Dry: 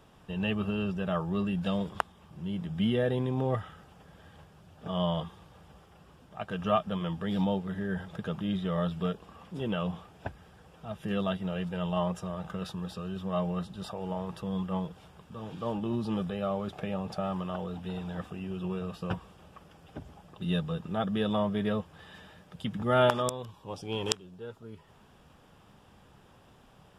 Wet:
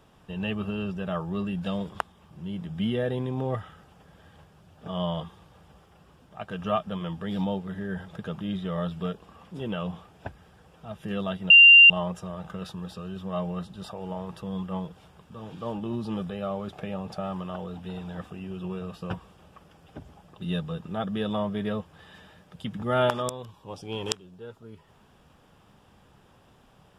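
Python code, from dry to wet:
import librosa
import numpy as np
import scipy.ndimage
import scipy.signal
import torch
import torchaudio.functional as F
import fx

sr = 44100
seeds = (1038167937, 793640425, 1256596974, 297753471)

y = fx.edit(x, sr, fx.bleep(start_s=11.5, length_s=0.4, hz=2780.0, db=-8.5), tone=tone)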